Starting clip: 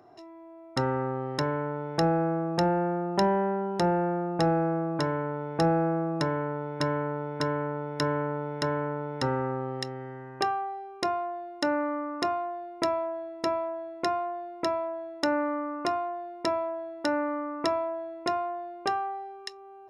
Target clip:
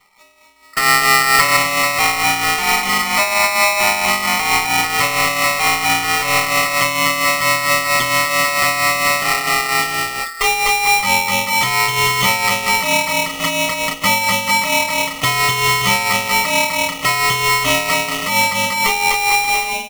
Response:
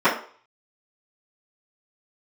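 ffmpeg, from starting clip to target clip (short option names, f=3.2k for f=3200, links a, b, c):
-filter_complex "[0:a]equalizer=f=3.8k:t=o:w=1.8:g=5,aecho=1:1:250|437.5|578.1|683.6|762.7:0.631|0.398|0.251|0.158|0.1,afwtdn=0.0282[a];[1:a]atrim=start_sample=2205,atrim=end_sample=3528,asetrate=66150,aresample=44100[b];[a][b]afir=irnorm=-1:irlink=0,aeval=exprs='1.78*(cos(1*acos(clip(val(0)/1.78,-1,1)))-cos(1*PI/2))+0.126*(cos(5*acos(clip(val(0)/1.78,-1,1)))-cos(5*PI/2))':c=same,alimiter=limit=-6dB:level=0:latency=1:release=84,tremolo=f=4.4:d=0.53,asettb=1/sr,asplit=3[c][d][e];[c]atrim=end=0.564[f];[d]atrim=start=0.56:end=1.57,asetpts=PTS-STARTPTS,afade=t=in:d=0.004:c=qsin,afade=t=out:st=1.006:d=0.004:c=qsin,lowshelf=f=400:g=9.5[g];[e]atrim=start=1.566[h];[f][g]acrossfade=d=0.004:c1=hsin:c2=qsin[i];[i][h]acrossfade=d=0.004:c1=qsin:c2=hsin,aeval=exprs='val(0)*sgn(sin(2*PI*1600*n/s))':c=same,volume=-1dB"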